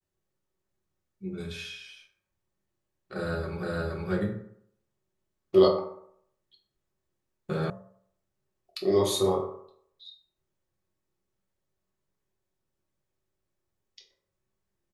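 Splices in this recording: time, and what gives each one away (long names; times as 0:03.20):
0:03.63: the same again, the last 0.47 s
0:07.70: cut off before it has died away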